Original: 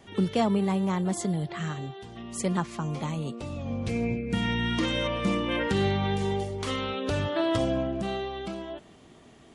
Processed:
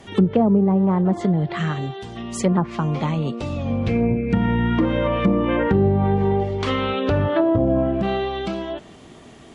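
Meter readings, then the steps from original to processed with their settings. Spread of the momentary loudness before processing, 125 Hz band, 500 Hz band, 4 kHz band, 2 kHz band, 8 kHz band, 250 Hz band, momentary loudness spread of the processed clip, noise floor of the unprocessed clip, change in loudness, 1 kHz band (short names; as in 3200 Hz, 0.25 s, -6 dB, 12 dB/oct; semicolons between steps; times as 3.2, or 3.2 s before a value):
10 LU, +9.0 dB, +8.5 dB, 0.0 dB, +3.5 dB, n/a, +9.0 dB, 9 LU, -53 dBFS, +8.0 dB, +7.0 dB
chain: treble ducked by the level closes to 580 Hz, closed at -21 dBFS; gain +9 dB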